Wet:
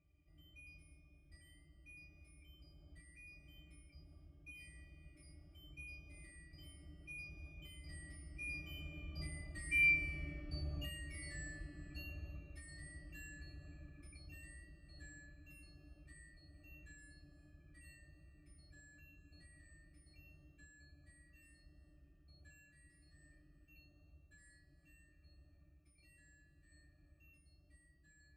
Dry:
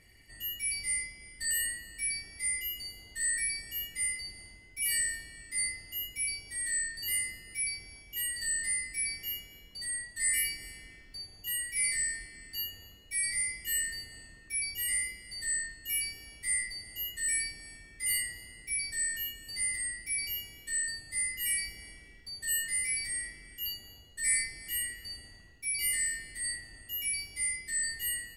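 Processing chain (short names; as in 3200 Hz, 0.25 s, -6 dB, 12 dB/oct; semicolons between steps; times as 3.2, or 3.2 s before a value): recorder AGC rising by 7.9 dB/s; Doppler pass-by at 10.39, 22 m/s, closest 28 m; octave resonator D, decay 0.11 s; gain +14 dB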